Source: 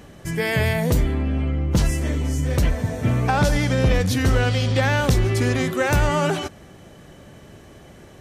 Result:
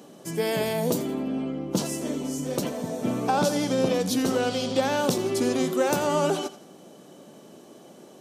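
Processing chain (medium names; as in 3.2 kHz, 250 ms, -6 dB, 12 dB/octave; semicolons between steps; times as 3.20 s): high-pass 200 Hz 24 dB/octave; peaking EQ 1.9 kHz -13 dB 0.97 oct; on a send: thinning echo 84 ms, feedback 36%, level -14.5 dB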